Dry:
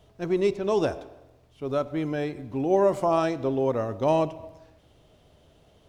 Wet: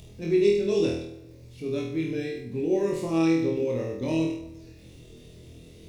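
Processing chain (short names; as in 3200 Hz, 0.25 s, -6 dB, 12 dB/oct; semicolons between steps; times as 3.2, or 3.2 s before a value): bin magnitudes rounded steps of 15 dB; band shelf 970 Hz -15.5 dB; notch 3100 Hz, Q 5.2; in parallel at +2.5 dB: upward compressor, threshold -32 dBFS; on the sum: crackle 19/s -41 dBFS; on a send: flutter echo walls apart 4.2 m, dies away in 0.67 s; on the sum: dynamic EQ 3000 Hz, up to +4 dB, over -39 dBFS, Q 0.92; gain -9 dB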